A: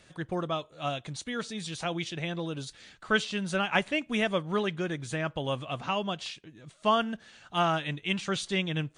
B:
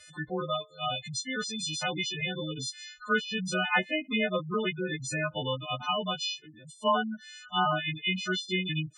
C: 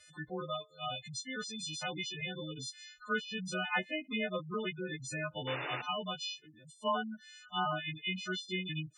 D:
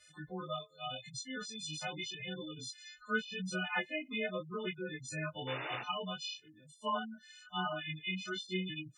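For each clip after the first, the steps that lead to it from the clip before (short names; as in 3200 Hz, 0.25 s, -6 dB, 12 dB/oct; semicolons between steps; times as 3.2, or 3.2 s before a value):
frequency quantiser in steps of 3 st; spectral gate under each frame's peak -10 dB strong; treble ducked by the level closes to 2000 Hz, closed at -22.5 dBFS
painted sound noise, 5.47–5.82, 260–2900 Hz -33 dBFS; gain -7 dB
chorus voices 2, 0.86 Hz, delay 18 ms, depth 2.5 ms; gain +1 dB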